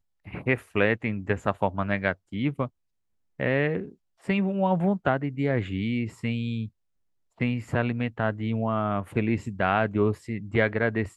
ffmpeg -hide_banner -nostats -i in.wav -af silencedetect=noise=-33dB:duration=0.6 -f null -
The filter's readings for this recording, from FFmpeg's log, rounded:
silence_start: 2.67
silence_end: 3.40 | silence_duration: 0.73
silence_start: 6.66
silence_end: 7.41 | silence_duration: 0.75